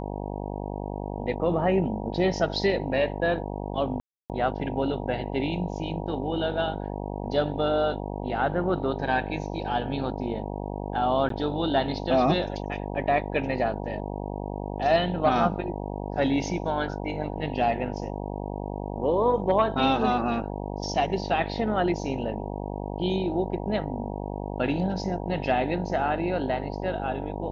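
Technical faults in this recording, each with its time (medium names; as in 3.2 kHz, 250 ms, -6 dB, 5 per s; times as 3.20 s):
buzz 50 Hz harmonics 19 -33 dBFS
4.00–4.30 s: dropout 298 ms
11.29–11.30 s: dropout 13 ms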